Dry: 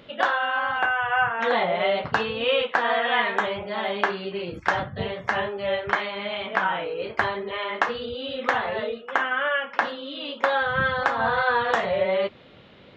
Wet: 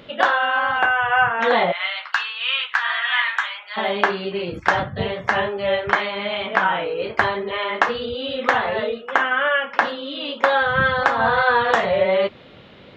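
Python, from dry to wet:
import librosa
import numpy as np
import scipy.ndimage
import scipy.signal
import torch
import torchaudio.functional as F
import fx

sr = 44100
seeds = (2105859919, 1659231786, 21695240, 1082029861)

y = fx.highpass(x, sr, hz=1200.0, slope=24, at=(1.71, 3.76), fade=0.02)
y = y * 10.0 ** (5.0 / 20.0)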